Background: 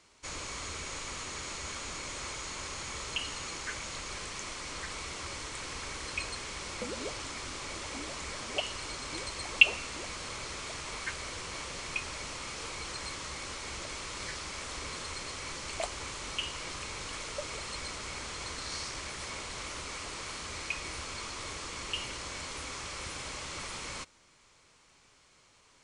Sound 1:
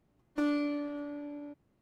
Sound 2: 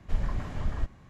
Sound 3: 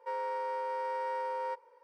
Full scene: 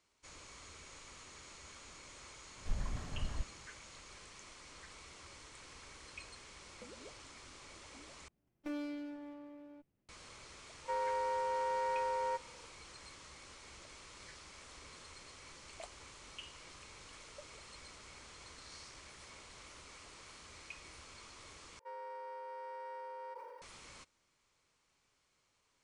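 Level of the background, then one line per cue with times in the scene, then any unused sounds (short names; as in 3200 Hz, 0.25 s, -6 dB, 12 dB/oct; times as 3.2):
background -14.5 dB
2.57 add 2 -9 dB
8.28 replace with 1 -10 dB + minimum comb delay 0.37 ms
10.82 add 3 -0.5 dB
21.79 replace with 3 -11.5 dB + sustainer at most 27 dB/s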